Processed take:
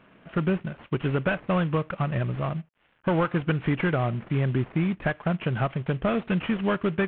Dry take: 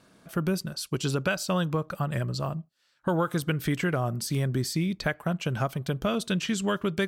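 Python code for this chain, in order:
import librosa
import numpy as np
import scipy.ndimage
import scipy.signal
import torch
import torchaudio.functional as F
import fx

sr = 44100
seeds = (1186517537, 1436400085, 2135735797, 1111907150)

y = fx.cvsd(x, sr, bps=16000)
y = F.gain(torch.from_numpy(y), 3.0).numpy()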